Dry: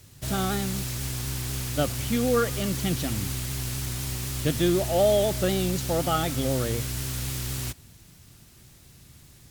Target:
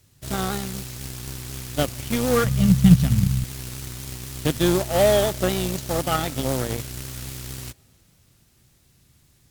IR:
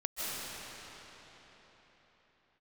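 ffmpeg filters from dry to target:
-filter_complex "[0:a]asplit=2[link_01][link_02];[1:a]atrim=start_sample=2205[link_03];[link_02][link_03]afir=irnorm=-1:irlink=0,volume=-29dB[link_04];[link_01][link_04]amix=inputs=2:normalize=0,aeval=exprs='0.299*(cos(1*acos(clip(val(0)/0.299,-1,1)))-cos(1*PI/2))+0.0299*(cos(7*acos(clip(val(0)/0.299,-1,1)))-cos(7*PI/2))':channel_layout=same,asettb=1/sr,asplit=3[link_05][link_06][link_07];[link_05]atrim=end=2.444[link_08];[link_06]atrim=start=2.44:end=3.44,asetpts=PTS-STARTPTS,afade=type=in:duration=0.004:curve=qsin,afade=type=out:start_time=0.996:duration=0.004:curve=qsin,lowshelf=frequency=240:width_type=q:width=3:gain=10.5[link_09];[link_07]atrim=start=3.436[link_10];[link_08][link_09]acrossfade=duration=0.004:curve1=hsin:curve2=qsin[link_11];[link_11][link_10]acrossfade=duration=0.004:curve1=qsin:curve2=hsin,volume=3dB"

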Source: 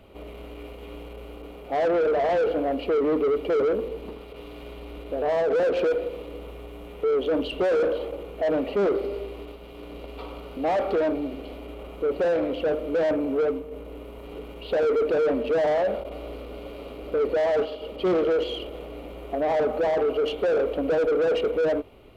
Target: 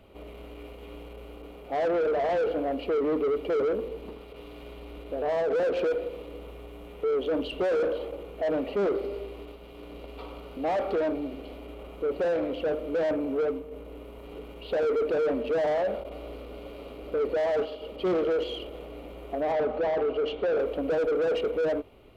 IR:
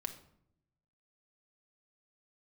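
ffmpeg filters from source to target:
-filter_complex "[0:a]asettb=1/sr,asplit=3[link_01][link_02][link_03];[link_01]atrim=end=19.524[link_04];[link_02]atrim=start=19.52:end=20.58,asetpts=PTS-STARTPTS,afade=type=in:duration=0.004:curve=qsin,afade=type=out:start_time=1.056:duration=0.004:curve=qsin,lowpass=4500[link_05];[link_03]atrim=start=20.576[link_06];[link_04][link_05]acrossfade=duration=0.004:curve1=hsin:curve2=qsin[link_07];[link_07][link_06]acrossfade=duration=0.004:curve1=qsin:curve2=hsin,volume=-3.5dB"

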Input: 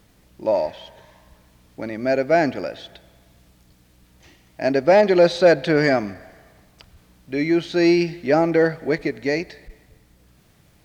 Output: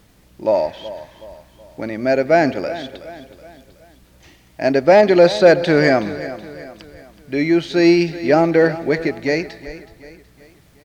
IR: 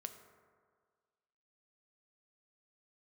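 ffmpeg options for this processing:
-af "aecho=1:1:373|746|1119|1492:0.178|0.0782|0.0344|0.0151,volume=3.5dB"

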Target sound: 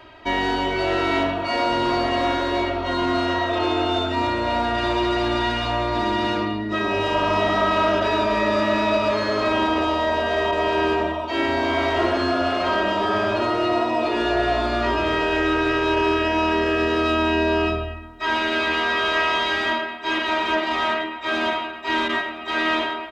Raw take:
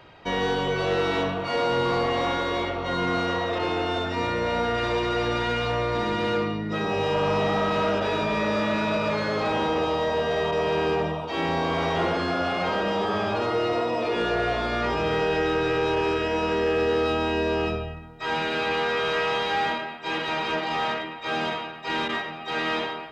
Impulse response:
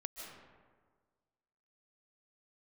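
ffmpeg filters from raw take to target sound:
-af "aecho=1:1:3.1:0.91,volume=1.5dB"

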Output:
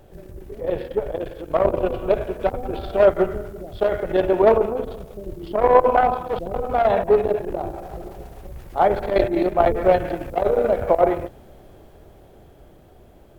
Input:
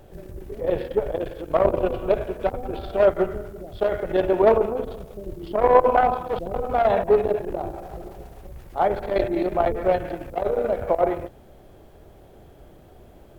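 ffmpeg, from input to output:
ffmpeg -i in.wav -filter_complex "[0:a]dynaudnorm=framelen=480:gausssize=9:maxgain=11.5dB,asplit=3[link_01][link_02][link_03];[link_01]afade=type=out:start_time=9.1:duration=0.02[link_04];[link_02]agate=range=-33dB:threshold=-16dB:ratio=3:detection=peak,afade=type=in:start_time=9.1:duration=0.02,afade=type=out:start_time=9.74:duration=0.02[link_05];[link_03]afade=type=in:start_time=9.74:duration=0.02[link_06];[link_04][link_05][link_06]amix=inputs=3:normalize=0,volume=-1dB" out.wav

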